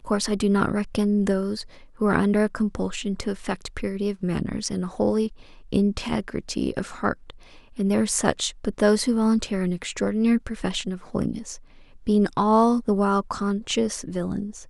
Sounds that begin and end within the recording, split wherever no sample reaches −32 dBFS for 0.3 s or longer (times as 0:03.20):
0:02.01–0:05.28
0:05.73–0:07.30
0:07.79–0:11.55